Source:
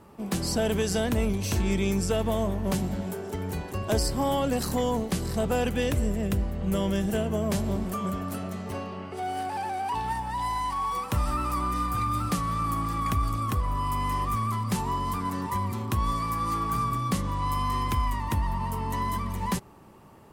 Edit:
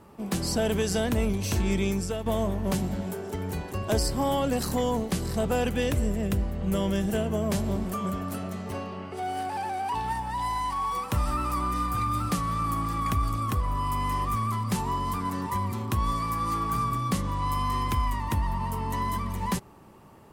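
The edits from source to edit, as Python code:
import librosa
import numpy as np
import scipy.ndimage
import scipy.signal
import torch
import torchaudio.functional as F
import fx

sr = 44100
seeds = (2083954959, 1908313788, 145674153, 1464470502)

y = fx.edit(x, sr, fx.fade_out_to(start_s=1.82, length_s=0.44, floor_db=-8.5), tone=tone)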